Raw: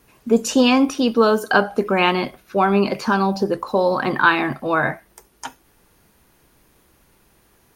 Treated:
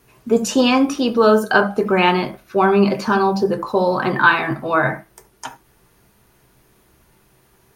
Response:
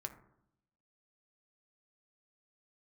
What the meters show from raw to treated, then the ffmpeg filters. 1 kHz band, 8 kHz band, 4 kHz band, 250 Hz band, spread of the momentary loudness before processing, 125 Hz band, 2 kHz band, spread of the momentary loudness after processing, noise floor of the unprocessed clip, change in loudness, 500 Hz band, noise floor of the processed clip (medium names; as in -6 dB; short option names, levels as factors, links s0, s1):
+2.0 dB, no reading, +0.5 dB, +1.0 dB, 9 LU, +2.5 dB, +2.0 dB, 8 LU, -58 dBFS, +1.5 dB, +2.0 dB, -57 dBFS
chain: -filter_complex "[1:a]atrim=start_sample=2205,atrim=end_sample=3969[s0];[0:a][s0]afir=irnorm=-1:irlink=0,volume=1.58"